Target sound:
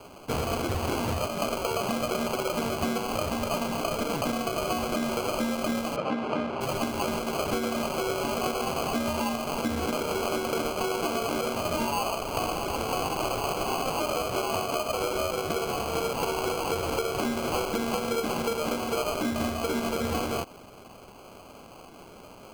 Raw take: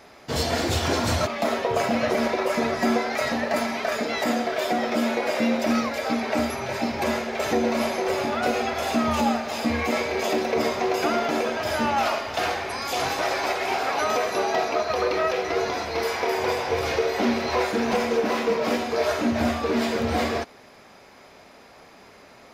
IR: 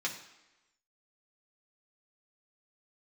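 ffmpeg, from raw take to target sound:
-filter_complex "[0:a]acrusher=samples=24:mix=1:aa=0.000001,asettb=1/sr,asplit=3[a][b][c];[a]atrim=end=5.964[d];[b]atrim=start=5.96:end=6.61,asetpts=PTS-STARTPTS,afade=t=in:d=0.004:c=qsin,afade=t=out:st=0.646:d=0.004:c=qsin,highpass=120,lowpass=2.6k[e];[c]atrim=start=6.606[f];[d][e]acrossfade=d=0.004:c1=hsin:c2=qsin[g];[g][f]acrossfade=d=0.004:c1=qsin:c2=hsin,acompressor=threshold=-27dB:ratio=6,volume=1.5dB"

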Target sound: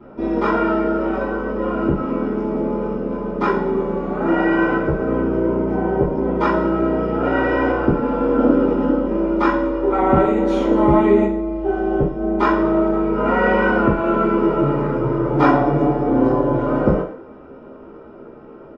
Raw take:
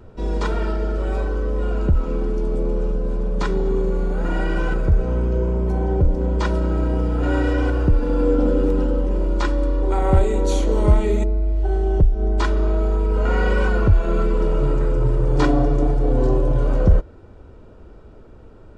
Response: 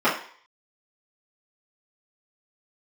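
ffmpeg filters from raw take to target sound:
-filter_complex "[0:a]highshelf=f=3.8k:g=-8,asplit=2[a][b];[b]adelay=15,volume=-9dB[c];[a][c]amix=inputs=2:normalize=0,aecho=1:1:109:0.141[d];[1:a]atrim=start_sample=2205[e];[d][e]afir=irnorm=-1:irlink=0,volume=-11dB"

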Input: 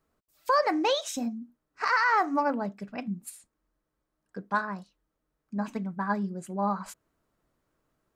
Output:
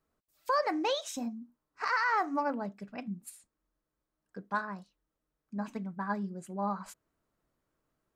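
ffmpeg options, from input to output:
-filter_complex "[0:a]asettb=1/sr,asplit=3[a][b][c];[a]atrim=end=1.104[d];[b]atrim=start=1.1:end=1.83,asetpts=PTS-STARTPTS,afade=t=in:d=0.004:c=qsin,afade=t=out:st=0.726:d=0.004:c=qsin,equalizer=f=1k:w=2.9:g=6.5[e];[c]atrim=start=1.826[f];[d][e]acrossfade=d=0.004:c1=hsin:c2=qsin[g];[g][f]acrossfade=d=0.004:c1=qsin:c2=hsin,volume=-5dB"

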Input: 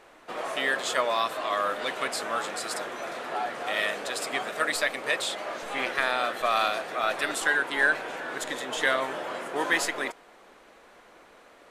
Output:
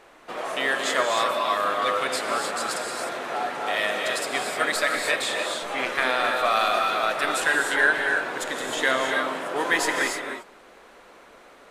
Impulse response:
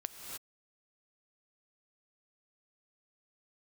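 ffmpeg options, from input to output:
-filter_complex "[1:a]atrim=start_sample=2205[a];[0:a][a]afir=irnorm=-1:irlink=0,volume=4.5dB"

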